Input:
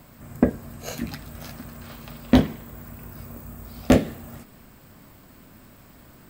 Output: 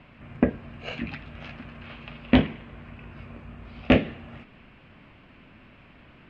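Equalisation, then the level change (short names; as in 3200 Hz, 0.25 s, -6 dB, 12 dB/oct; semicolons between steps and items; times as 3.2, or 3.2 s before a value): ladder low-pass 3000 Hz, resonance 60%; +8.0 dB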